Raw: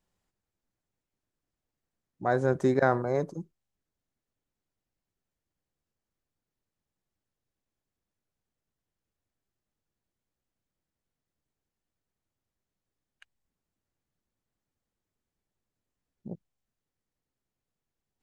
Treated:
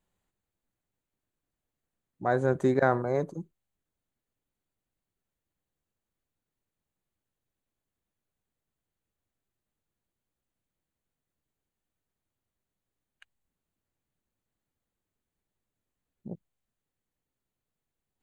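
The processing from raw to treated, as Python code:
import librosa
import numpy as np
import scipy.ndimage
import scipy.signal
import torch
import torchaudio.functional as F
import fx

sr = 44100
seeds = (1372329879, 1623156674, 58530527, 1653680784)

y = fx.peak_eq(x, sr, hz=5300.0, db=-14.0, octaves=0.21)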